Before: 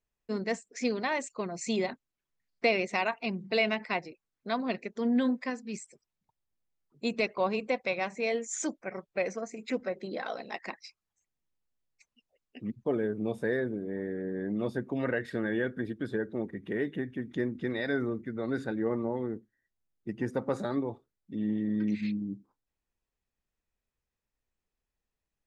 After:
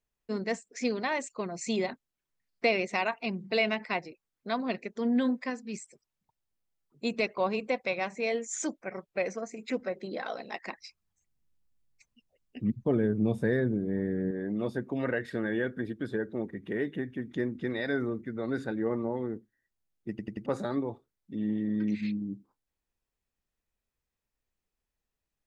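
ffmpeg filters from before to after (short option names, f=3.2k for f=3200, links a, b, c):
-filter_complex "[0:a]asettb=1/sr,asplit=3[a][b][c];[a]atrim=end=10.774[d];[b]atrim=start=10.77:end=14.31,asetpts=PTS-STARTPTS,afade=t=in:d=0.004:c=qsin,afade=t=out:st=3.536:d=0.004:c=qsin,bass=f=250:g=11,treble=f=4k:g=1[e];[c]atrim=start=14.306[f];[d][e]acrossfade=d=0.004:c1=hsin:c2=qsin[g];[g][f]acrossfade=d=0.004:c1=qsin:c2=hsin,asplit=5[h][i][j][k][l];[h]atrim=end=20.192[m];[i]atrim=start=20.098:end=20.192[n];[j]atrim=start=20.098:end=20.192[o];[k]atrim=start=20.098:end=20.192[p];[l]atrim=start=20.458[q];[m][n]acrossfade=d=0.004:c1=hsin:c2=hsin[r];[r][o]acrossfade=d=0.004:c1=hsin:c2=hsin[s];[s][p]acrossfade=d=0.004:c1=hsin:c2=hsin[t];[t][q]acrossfade=d=0.004:c1=hsin:c2=hsin"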